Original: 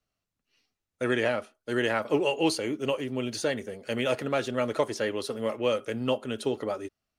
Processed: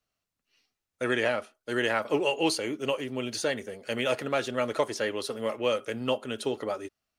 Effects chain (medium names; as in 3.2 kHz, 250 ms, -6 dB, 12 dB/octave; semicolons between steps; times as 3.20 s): bass shelf 430 Hz -5.5 dB; trim +1.5 dB